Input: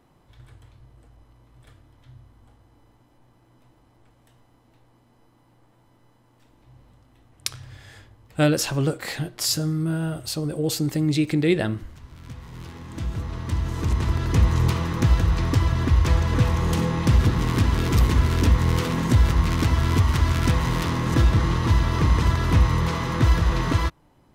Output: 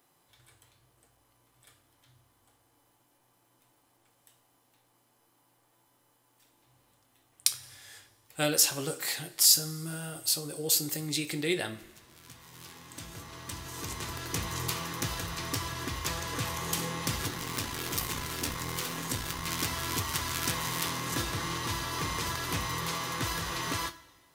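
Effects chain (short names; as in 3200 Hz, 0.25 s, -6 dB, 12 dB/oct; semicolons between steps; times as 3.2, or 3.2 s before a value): 17.28–19.46 half-wave gain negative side -7 dB; RIAA curve recording; two-slope reverb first 0.27 s, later 1.7 s, from -19 dB, DRR 7.5 dB; gain -7.5 dB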